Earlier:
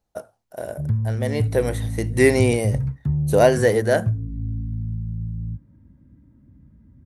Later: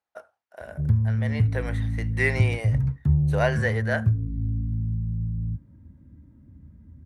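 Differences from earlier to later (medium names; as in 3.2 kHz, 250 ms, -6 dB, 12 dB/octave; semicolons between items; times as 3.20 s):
speech: add band-pass filter 1.7 kHz, Q 1.2; master: add peaking EQ 80 Hz +11 dB 0.21 oct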